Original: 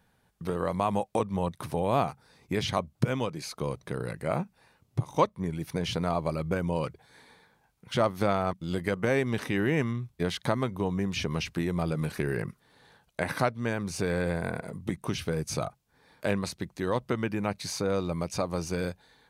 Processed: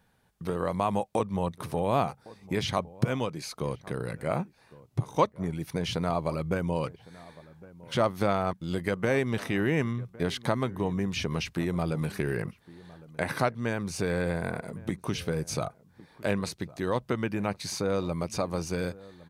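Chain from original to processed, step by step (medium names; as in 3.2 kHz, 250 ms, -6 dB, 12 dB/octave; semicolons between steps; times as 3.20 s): echo from a far wall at 190 m, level -20 dB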